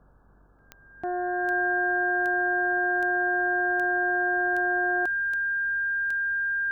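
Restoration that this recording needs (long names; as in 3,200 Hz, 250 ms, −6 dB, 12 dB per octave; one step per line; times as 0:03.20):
click removal
hum removal 48.3 Hz, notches 38
notch filter 1,600 Hz, Q 30
downward expander −48 dBFS, range −21 dB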